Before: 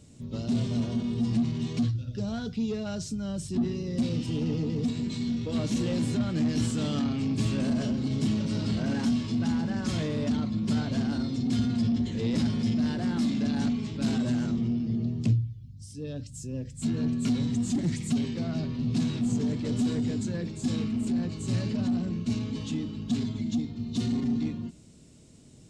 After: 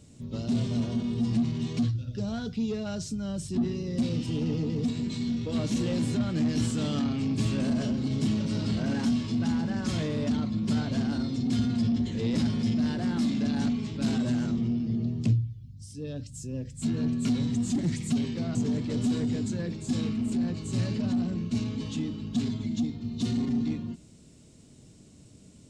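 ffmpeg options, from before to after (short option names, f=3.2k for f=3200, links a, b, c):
-filter_complex "[0:a]asplit=2[a][b];[a]atrim=end=18.552[c];[b]atrim=start=19.298[d];[c][d]acrossfade=d=0.004:c1=hsin:c2=hsin"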